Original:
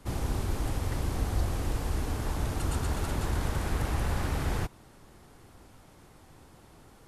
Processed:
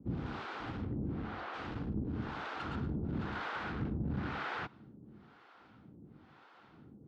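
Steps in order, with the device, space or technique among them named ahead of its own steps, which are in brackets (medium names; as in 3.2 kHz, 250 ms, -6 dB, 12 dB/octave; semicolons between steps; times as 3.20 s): 0.84–1.54 s: tone controls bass -3 dB, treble -9 dB; guitar amplifier with harmonic tremolo (harmonic tremolo 1 Hz, depth 100%, crossover 490 Hz; saturation -29 dBFS, distortion -13 dB; cabinet simulation 91–3800 Hz, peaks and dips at 140 Hz +5 dB, 210 Hz +9 dB, 300 Hz +5 dB, 590 Hz -4 dB, 1.4 kHz +7 dB)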